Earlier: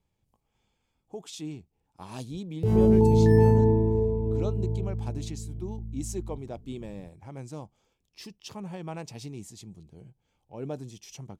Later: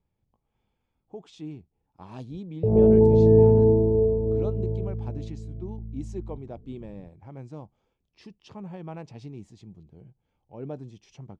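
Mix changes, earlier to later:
background: add synth low-pass 590 Hz, resonance Q 4.8; master: add tape spacing loss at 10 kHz 24 dB

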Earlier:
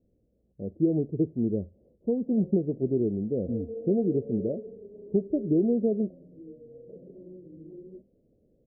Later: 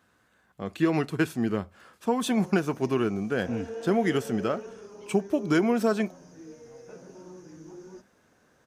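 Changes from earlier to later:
speech: add HPF 85 Hz; master: remove steep low-pass 560 Hz 48 dB/oct

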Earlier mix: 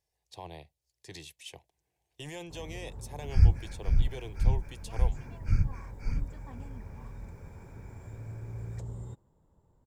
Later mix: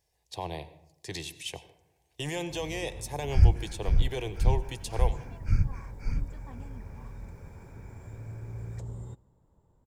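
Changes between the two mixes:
speech +5.0 dB; reverb: on, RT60 0.80 s

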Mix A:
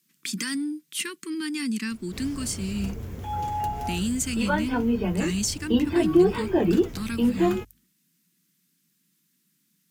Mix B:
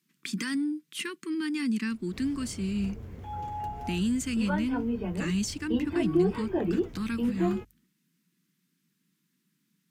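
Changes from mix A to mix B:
background -6.5 dB; master: add high shelf 4100 Hz -11.5 dB

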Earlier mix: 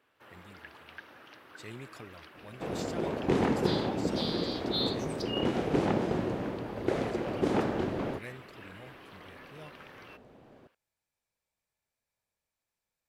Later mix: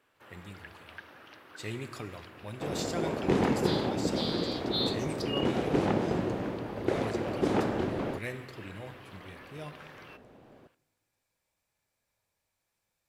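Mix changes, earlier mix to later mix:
speech +3.5 dB; reverb: on, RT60 1.7 s

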